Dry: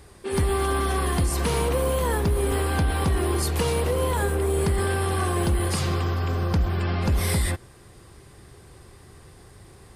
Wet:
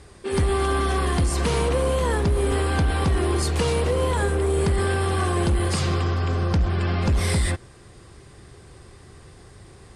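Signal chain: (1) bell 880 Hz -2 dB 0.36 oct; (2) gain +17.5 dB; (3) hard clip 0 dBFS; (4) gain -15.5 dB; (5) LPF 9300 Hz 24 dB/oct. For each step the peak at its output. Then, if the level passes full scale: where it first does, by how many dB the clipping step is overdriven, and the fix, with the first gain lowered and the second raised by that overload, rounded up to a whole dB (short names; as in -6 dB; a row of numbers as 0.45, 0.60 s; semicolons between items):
-14.0, +3.5, 0.0, -15.5, -14.5 dBFS; step 2, 3.5 dB; step 2 +13.5 dB, step 4 -11.5 dB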